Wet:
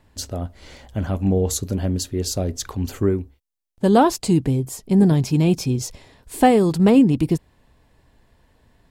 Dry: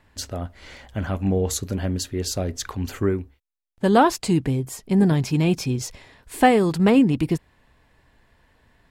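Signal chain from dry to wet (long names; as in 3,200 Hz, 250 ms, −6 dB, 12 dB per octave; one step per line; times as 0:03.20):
parametric band 1,800 Hz −7.5 dB 1.8 octaves
level +3 dB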